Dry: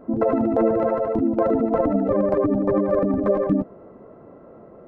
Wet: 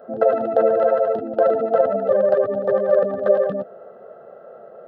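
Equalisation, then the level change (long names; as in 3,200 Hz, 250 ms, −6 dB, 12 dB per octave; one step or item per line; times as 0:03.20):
high-pass filter 350 Hz 12 dB per octave
dynamic equaliser 1,000 Hz, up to −4 dB, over −36 dBFS, Q 1.3
phaser with its sweep stopped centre 1,500 Hz, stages 8
+8.0 dB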